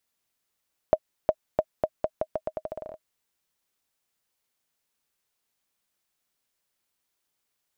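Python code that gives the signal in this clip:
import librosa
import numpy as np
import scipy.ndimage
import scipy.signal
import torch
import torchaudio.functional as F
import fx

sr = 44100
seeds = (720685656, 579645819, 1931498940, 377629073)

y = fx.bouncing_ball(sr, first_gap_s=0.36, ratio=0.83, hz=627.0, decay_ms=54.0, level_db=-7.0)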